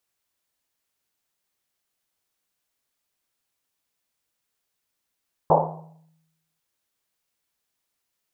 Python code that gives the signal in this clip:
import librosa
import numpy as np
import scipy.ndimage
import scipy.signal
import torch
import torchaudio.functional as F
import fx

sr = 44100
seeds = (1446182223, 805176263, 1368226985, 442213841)

y = fx.risset_drum(sr, seeds[0], length_s=1.1, hz=160.0, decay_s=1.02, noise_hz=710.0, noise_width_hz=490.0, noise_pct=75)